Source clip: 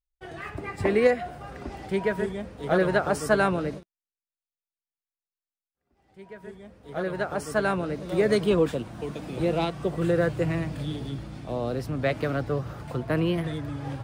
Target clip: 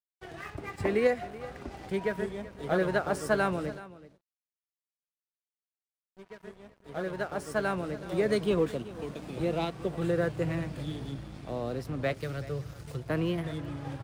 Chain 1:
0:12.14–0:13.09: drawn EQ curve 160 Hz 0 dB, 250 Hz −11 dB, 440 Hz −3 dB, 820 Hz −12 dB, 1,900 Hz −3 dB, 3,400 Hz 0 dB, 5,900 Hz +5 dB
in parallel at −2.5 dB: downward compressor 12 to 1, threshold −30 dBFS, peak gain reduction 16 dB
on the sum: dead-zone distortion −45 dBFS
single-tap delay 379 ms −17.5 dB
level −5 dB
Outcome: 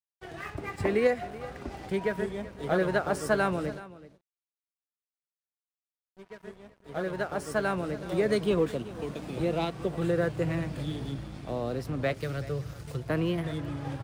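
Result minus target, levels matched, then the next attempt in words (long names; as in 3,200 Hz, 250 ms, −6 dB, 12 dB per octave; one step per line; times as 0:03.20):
downward compressor: peak gain reduction −9 dB
0:12.14–0:13.09: drawn EQ curve 160 Hz 0 dB, 250 Hz −11 dB, 440 Hz −3 dB, 820 Hz −12 dB, 1,900 Hz −3 dB, 3,400 Hz 0 dB, 5,900 Hz +5 dB
in parallel at −2.5 dB: downward compressor 12 to 1, threshold −40 dBFS, peak gain reduction 25 dB
on the sum: dead-zone distortion −45 dBFS
single-tap delay 379 ms −17.5 dB
level −5 dB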